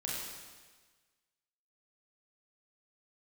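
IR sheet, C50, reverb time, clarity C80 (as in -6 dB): -1.5 dB, 1.4 s, 1.0 dB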